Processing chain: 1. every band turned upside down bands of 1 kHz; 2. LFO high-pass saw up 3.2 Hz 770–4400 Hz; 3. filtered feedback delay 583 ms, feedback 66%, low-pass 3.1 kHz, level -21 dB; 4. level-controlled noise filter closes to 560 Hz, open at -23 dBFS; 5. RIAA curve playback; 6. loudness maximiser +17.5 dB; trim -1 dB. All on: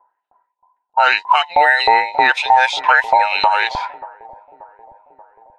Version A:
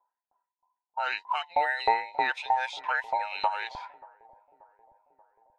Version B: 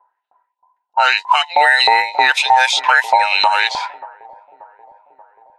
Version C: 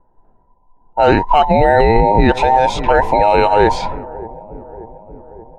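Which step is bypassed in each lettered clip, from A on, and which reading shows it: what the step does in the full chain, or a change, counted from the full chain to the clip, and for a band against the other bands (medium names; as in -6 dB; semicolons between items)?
6, crest factor change +6.5 dB; 5, 4 kHz band +5.5 dB; 2, 250 Hz band +24.0 dB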